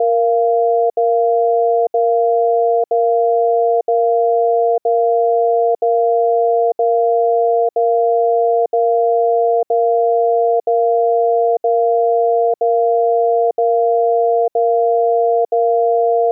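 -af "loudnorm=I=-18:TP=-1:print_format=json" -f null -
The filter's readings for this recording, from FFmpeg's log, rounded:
"input_i" : "-14.8",
"input_tp" : "-7.8",
"input_lra" : "0.0",
"input_thresh" : "-24.8",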